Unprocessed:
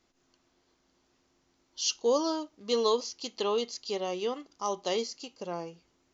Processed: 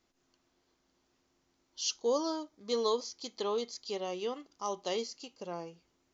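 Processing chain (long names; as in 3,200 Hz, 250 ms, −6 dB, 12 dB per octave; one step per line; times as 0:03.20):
0:01.90–0:03.87: notch filter 2,800 Hz, Q 6.7
level −4 dB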